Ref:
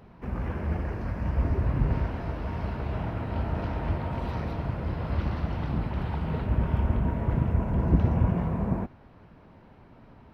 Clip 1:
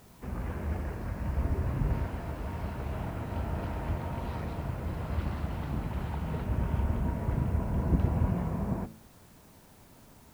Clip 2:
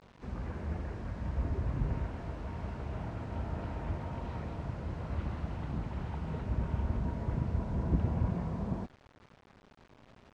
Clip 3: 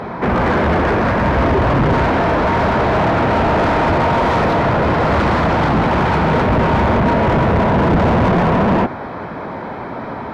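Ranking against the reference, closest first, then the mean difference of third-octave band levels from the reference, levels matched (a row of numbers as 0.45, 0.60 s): 2, 1, 3; 2.0, 4.5, 6.0 dB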